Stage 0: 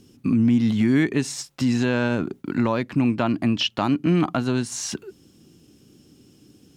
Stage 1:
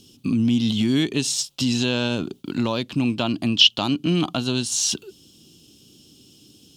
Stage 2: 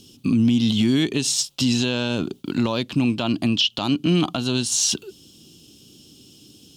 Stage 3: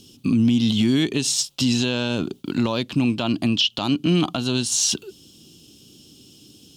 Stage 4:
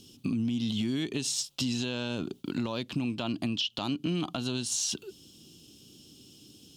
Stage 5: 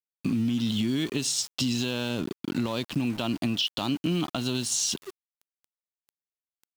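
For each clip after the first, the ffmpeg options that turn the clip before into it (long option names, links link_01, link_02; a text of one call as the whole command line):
ffmpeg -i in.wav -af "highshelf=frequency=2500:width_type=q:width=3:gain=8,volume=-1.5dB" out.wav
ffmpeg -i in.wav -af "alimiter=limit=-13dB:level=0:latency=1:release=84,volume=2.5dB" out.wav
ffmpeg -i in.wav -af anull out.wav
ffmpeg -i in.wav -af "acompressor=threshold=-24dB:ratio=3,volume=-5dB" out.wav
ffmpeg -i in.wav -af "aeval=exprs='val(0)*gte(abs(val(0)),0.00794)':channel_layout=same,volume=3.5dB" out.wav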